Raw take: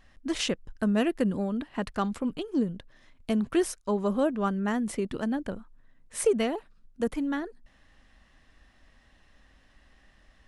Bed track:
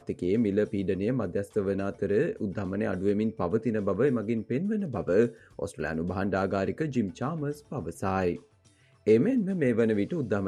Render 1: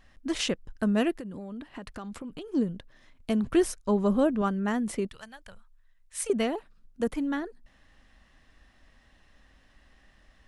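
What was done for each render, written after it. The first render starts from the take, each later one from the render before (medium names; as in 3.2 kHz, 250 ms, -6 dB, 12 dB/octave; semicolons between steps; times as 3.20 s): 1.13–2.47 s: compression 10:1, threshold -35 dBFS; 3.44–4.42 s: bass shelf 210 Hz +8 dB; 5.09–6.30 s: amplifier tone stack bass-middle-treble 10-0-10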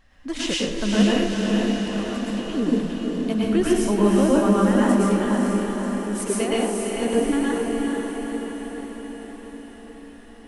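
on a send: echo that smears into a reverb 468 ms, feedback 63%, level -3 dB; on the sum: plate-style reverb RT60 0.69 s, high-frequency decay 0.9×, pre-delay 95 ms, DRR -5 dB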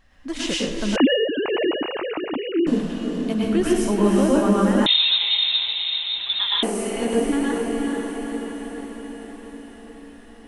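0.96–2.67 s: formants replaced by sine waves; 4.86–6.63 s: frequency inversion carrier 3.9 kHz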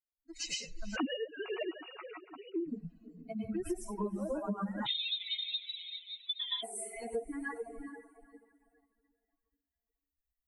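expander on every frequency bin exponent 3; compression 5:1, threshold -34 dBFS, peak gain reduction 17.5 dB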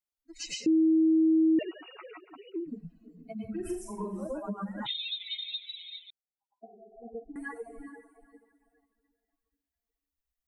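0.66–1.59 s: bleep 320 Hz -19.5 dBFS; 3.54–4.27 s: flutter echo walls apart 7.2 m, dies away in 0.43 s; 6.10–7.36 s: rippled Chebyshev low-pass 810 Hz, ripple 6 dB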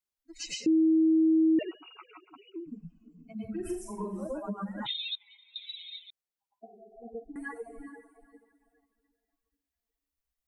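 1.75–3.34 s: static phaser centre 2.7 kHz, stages 8; 5.15–5.56 s: resonant low-pass 1 kHz, resonance Q 5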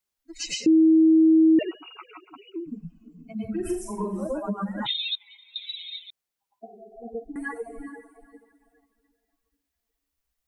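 trim +6.5 dB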